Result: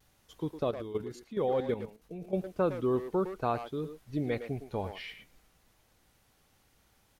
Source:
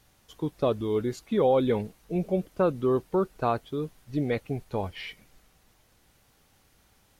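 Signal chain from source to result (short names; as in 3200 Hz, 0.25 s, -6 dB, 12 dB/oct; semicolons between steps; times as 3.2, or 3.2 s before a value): 0.63–2.34 level quantiser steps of 12 dB; speakerphone echo 0.11 s, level -8 dB; vibrato 0.59 Hz 25 cents; gain -4.5 dB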